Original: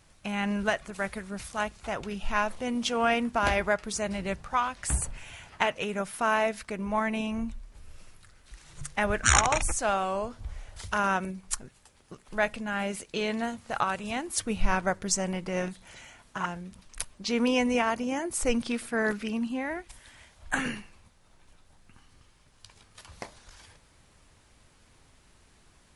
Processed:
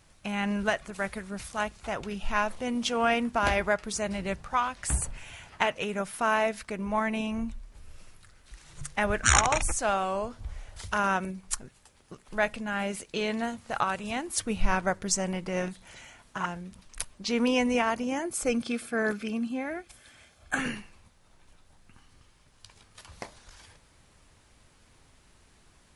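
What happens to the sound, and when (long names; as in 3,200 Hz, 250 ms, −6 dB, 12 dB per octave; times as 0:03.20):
0:18.30–0:20.59: notch comb filter 960 Hz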